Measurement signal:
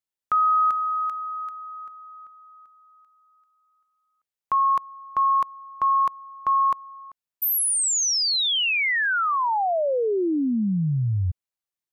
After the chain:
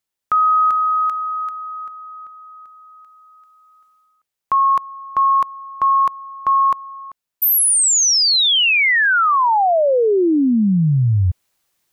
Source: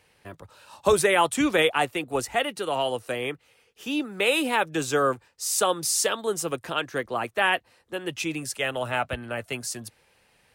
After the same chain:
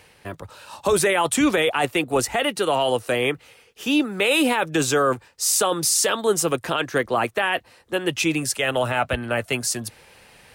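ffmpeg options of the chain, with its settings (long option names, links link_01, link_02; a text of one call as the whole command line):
ffmpeg -i in.wav -af "alimiter=limit=-19dB:level=0:latency=1:release=12,areverse,acompressor=mode=upward:threshold=-42dB:ratio=1.5:attack=2.6:release=408:knee=2.83:detection=peak,areverse,volume=8dB" out.wav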